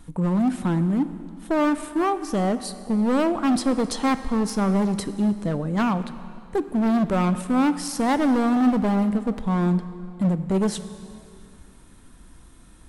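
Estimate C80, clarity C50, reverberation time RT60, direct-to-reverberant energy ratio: 13.5 dB, 12.5 dB, 2.4 s, 11.5 dB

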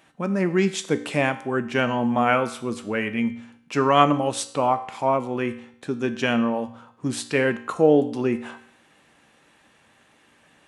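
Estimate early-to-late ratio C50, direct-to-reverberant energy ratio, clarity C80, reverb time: 13.0 dB, 9.0 dB, 16.0 dB, 0.65 s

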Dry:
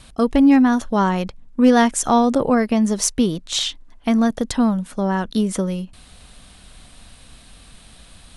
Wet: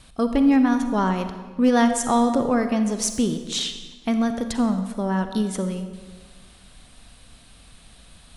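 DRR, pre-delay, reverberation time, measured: 8.0 dB, 37 ms, 1.5 s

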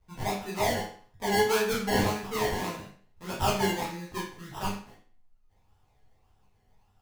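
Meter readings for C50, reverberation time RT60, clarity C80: 4.5 dB, 0.50 s, 9.5 dB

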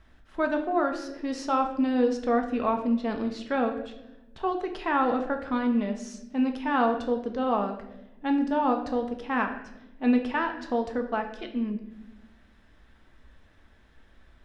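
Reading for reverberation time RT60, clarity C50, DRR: 0.95 s, 8.5 dB, 3.5 dB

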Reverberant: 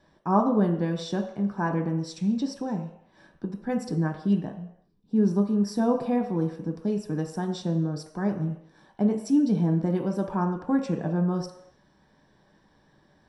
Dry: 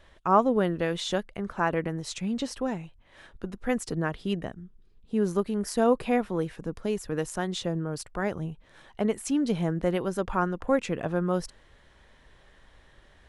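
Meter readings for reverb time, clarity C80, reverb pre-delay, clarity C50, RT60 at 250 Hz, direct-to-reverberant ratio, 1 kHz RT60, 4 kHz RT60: 0.75 s, 10.5 dB, 3 ms, 8.0 dB, 0.60 s, 2.5 dB, 0.75 s, 0.75 s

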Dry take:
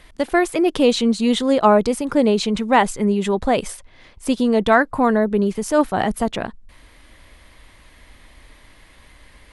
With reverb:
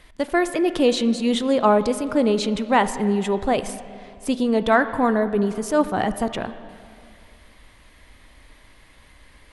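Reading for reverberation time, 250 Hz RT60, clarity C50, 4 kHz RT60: 2.3 s, 2.4 s, 12.0 dB, 2.2 s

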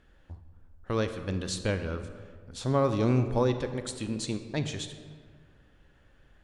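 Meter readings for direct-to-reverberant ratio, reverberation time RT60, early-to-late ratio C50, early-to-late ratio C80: 9.0 dB, 1.8 s, 9.5 dB, 10.5 dB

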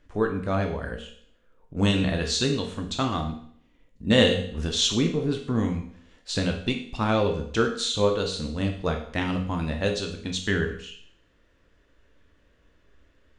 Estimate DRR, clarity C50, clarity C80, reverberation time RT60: 2.5 dB, 7.5 dB, 11.5 dB, 0.60 s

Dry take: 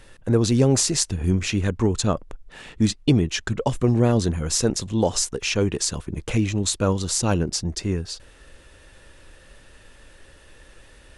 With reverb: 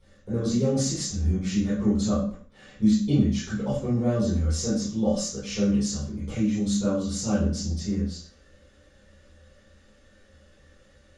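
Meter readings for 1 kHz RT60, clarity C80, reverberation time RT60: 0.45 s, 7.0 dB, 0.45 s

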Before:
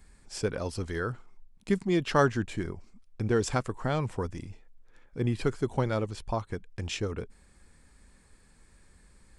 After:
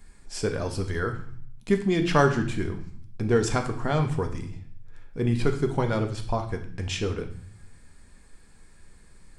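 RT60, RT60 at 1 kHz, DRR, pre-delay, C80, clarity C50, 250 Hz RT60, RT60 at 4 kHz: 0.55 s, 0.55 s, 4.5 dB, 3 ms, 14.0 dB, 10.5 dB, 0.75 s, 0.60 s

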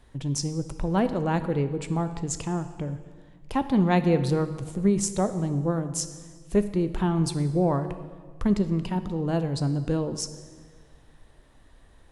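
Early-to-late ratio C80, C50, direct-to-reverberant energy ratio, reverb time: 13.0 dB, 11.5 dB, 10.0 dB, 1.6 s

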